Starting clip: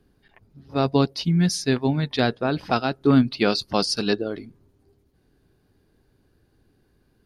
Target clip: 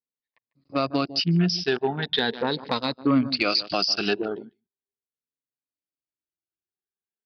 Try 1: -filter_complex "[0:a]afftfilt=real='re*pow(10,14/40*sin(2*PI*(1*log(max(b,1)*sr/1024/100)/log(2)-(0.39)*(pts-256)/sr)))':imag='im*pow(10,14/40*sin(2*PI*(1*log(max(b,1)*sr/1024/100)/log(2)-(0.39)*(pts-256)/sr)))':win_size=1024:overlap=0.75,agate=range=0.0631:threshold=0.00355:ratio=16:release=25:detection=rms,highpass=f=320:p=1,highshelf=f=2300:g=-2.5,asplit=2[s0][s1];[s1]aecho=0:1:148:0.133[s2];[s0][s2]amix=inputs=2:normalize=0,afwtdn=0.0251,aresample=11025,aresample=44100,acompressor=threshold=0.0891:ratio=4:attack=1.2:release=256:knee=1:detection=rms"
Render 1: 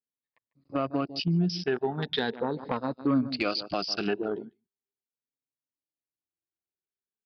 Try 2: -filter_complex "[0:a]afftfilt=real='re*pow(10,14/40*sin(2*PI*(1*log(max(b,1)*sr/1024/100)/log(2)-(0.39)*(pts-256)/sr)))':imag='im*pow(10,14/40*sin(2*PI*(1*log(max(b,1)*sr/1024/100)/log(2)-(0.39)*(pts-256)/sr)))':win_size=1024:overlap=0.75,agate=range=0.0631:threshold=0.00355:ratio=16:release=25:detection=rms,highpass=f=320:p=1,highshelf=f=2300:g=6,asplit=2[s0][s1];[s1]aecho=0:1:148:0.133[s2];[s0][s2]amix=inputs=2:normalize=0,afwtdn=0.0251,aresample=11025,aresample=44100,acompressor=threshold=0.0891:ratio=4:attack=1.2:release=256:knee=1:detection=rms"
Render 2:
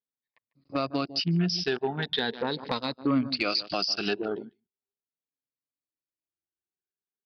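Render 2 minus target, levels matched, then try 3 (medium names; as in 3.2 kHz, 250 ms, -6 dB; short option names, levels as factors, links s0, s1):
compression: peak gain reduction +4.5 dB
-filter_complex "[0:a]afftfilt=real='re*pow(10,14/40*sin(2*PI*(1*log(max(b,1)*sr/1024/100)/log(2)-(0.39)*(pts-256)/sr)))':imag='im*pow(10,14/40*sin(2*PI*(1*log(max(b,1)*sr/1024/100)/log(2)-(0.39)*(pts-256)/sr)))':win_size=1024:overlap=0.75,agate=range=0.0631:threshold=0.00355:ratio=16:release=25:detection=rms,highpass=f=320:p=1,highshelf=f=2300:g=6,asplit=2[s0][s1];[s1]aecho=0:1:148:0.133[s2];[s0][s2]amix=inputs=2:normalize=0,afwtdn=0.0251,aresample=11025,aresample=44100,acompressor=threshold=0.178:ratio=4:attack=1.2:release=256:knee=1:detection=rms"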